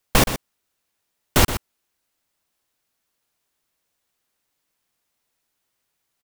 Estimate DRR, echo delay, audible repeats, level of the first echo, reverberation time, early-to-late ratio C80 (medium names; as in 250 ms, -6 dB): no reverb, 122 ms, 1, -11.0 dB, no reverb, no reverb